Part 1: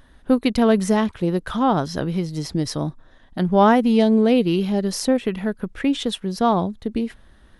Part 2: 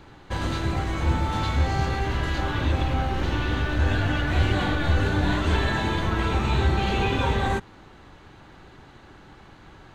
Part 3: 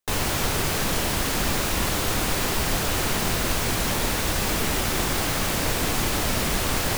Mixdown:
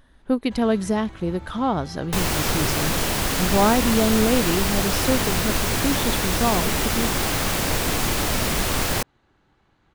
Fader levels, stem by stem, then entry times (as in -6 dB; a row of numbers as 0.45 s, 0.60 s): -4.0 dB, -15.5 dB, +1.5 dB; 0.00 s, 0.20 s, 2.05 s